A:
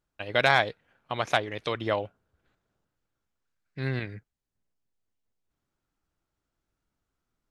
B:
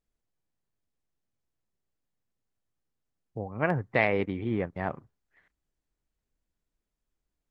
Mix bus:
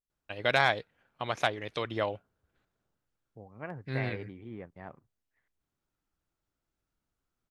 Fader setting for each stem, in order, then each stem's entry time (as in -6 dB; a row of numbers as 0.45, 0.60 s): -3.5, -14.0 dB; 0.10, 0.00 s